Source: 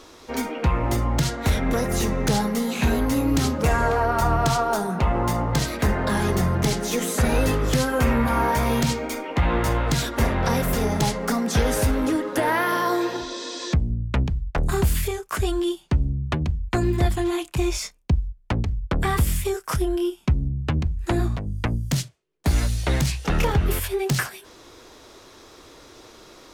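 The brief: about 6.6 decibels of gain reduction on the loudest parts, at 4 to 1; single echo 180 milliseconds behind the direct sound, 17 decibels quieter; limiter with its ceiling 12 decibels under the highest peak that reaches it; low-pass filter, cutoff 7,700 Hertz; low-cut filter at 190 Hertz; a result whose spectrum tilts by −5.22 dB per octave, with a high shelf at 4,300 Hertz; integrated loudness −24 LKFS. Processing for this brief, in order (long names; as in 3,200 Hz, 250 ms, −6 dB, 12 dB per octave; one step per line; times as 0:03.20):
high-pass filter 190 Hz
low-pass filter 7,700 Hz
high-shelf EQ 4,300 Hz −7 dB
downward compressor 4 to 1, threshold −27 dBFS
brickwall limiter −25 dBFS
single-tap delay 180 ms −17 dB
level +10 dB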